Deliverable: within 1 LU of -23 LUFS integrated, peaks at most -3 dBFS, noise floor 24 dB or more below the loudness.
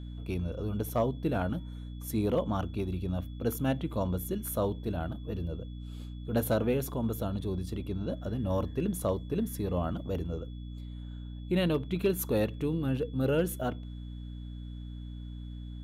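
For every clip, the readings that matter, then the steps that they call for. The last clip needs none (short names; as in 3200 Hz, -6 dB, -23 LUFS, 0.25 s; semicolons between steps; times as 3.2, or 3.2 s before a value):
hum 60 Hz; harmonics up to 300 Hz; hum level -38 dBFS; steady tone 3400 Hz; tone level -60 dBFS; loudness -32.5 LUFS; peak -17.5 dBFS; loudness target -23.0 LUFS
-> notches 60/120/180/240/300 Hz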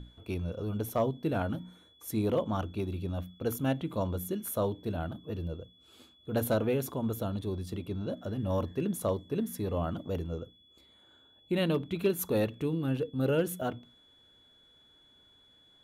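hum none; steady tone 3400 Hz; tone level -60 dBFS
-> notch 3400 Hz, Q 30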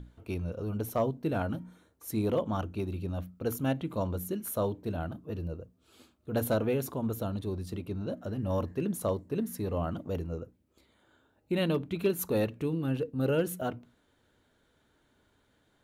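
steady tone none; loudness -33.0 LUFS; peak -17.0 dBFS; loudness target -23.0 LUFS
-> gain +10 dB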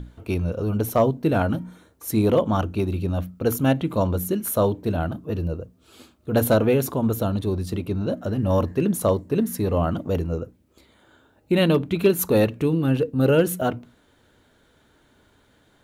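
loudness -23.0 LUFS; peak -7.0 dBFS; noise floor -60 dBFS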